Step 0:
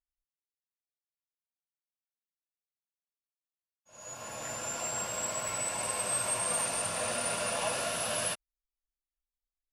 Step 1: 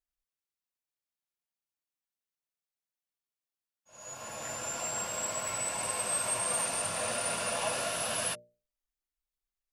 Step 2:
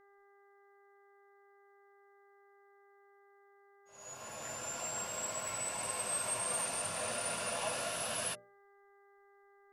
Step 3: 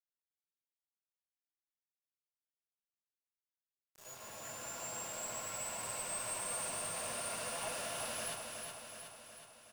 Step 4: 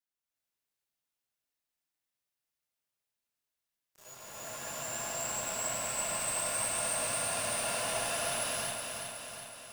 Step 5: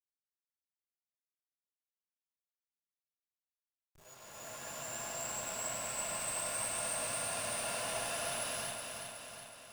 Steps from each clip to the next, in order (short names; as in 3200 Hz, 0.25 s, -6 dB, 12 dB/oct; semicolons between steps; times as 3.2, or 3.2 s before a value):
notches 60/120/180/240/300/360/420/480/540/600 Hz
buzz 400 Hz, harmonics 5, -60 dBFS -4 dB/oct; gain -4.5 dB
one diode to ground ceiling -33.5 dBFS; requantised 8-bit, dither none; on a send: feedback echo 0.369 s, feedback 59%, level -5 dB; on the sum: gain -3.5 dB
non-linear reverb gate 0.43 s rising, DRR -6.5 dB
backlash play -52.5 dBFS; gain -4 dB